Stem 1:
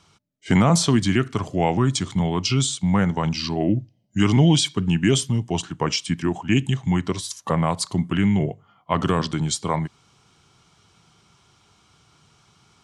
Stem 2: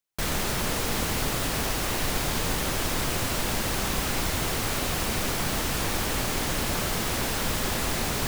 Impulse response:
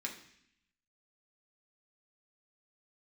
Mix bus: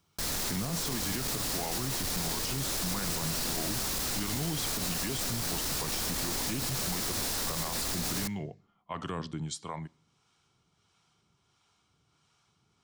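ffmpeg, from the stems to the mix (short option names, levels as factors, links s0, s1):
-filter_complex "[0:a]acrossover=split=570[s0][s1];[s0]aeval=exprs='val(0)*(1-0.5/2+0.5/2*cos(2*PI*1.5*n/s))':c=same[s2];[s1]aeval=exprs='val(0)*(1-0.5/2-0.5/2*cos(2*PI*1.5*n/s))':c=same[s3];[s2][s3]amix=inputs=2:normalize=0,volume=0.266,asplit=2[s4][s5];[s5]volume=0.0944[s6];[1:a]highshelf=f=3600:t=q:w=1.5:g=6,asoftclip=type=tanh:threshold=0.0376,volume=0.794,asplit=2[s7][s8];[s8]volume=0.168[s9];[2:a]atrim=start_sample=2205[s10];[s6][s9]amix=inputs=2:normalize=0[s11];[s11][s10]afir=irnorm=-1:irlink=0[s12];[s4][s7][s12]amix=inputs=3:normalize=0,alimiter=level_in=1.06:limit=0.0631:level=0:latency=1:release=48,volume=0.944"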